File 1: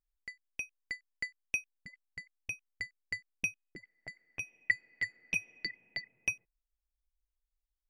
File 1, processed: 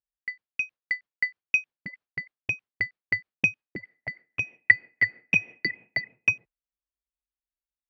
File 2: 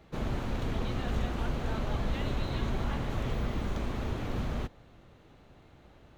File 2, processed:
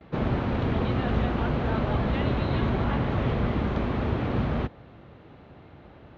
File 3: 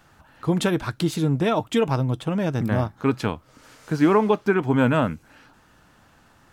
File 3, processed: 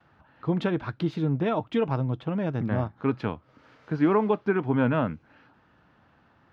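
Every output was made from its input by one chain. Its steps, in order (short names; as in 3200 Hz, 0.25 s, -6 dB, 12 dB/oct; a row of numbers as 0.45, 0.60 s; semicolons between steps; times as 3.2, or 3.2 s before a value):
gate with hold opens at -50 dBFS; HPF 71 Hz 12 dB/oct; air absorption 280 m; match loudness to -27 LUFS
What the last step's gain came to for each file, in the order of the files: +15.0, +9.5, -3.5 dB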